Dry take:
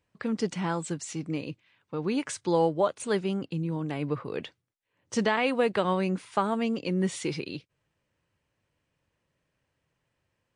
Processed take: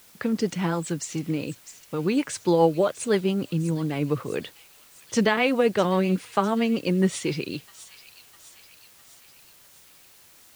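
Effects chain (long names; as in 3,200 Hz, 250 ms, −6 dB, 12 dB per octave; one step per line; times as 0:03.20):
rotating-speaker cabinet horn 7.5 Hz
delay with a high-pass on its return 653 ms, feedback 59%, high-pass 3,400 Hz, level −11 dB
bit-depth reduction 10 bits, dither triangular
level +6.5 dB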